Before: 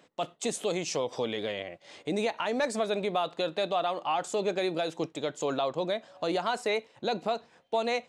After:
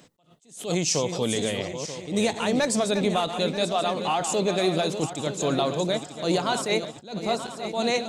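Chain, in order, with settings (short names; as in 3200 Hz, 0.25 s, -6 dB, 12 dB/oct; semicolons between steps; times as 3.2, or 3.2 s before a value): regenerating reverse delay 0.467 s, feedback 64%, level -9 dB; tone controls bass +11 dB, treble +10 dB; attack slew limiter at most 140 dB/s; gain +3 dB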